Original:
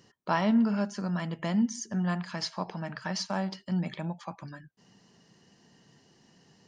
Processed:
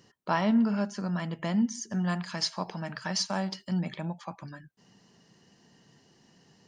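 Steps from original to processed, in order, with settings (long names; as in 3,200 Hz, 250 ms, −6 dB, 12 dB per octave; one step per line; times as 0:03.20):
0:01.90–0:03.79: high-shelf EQ 4,800 Hz +9 dB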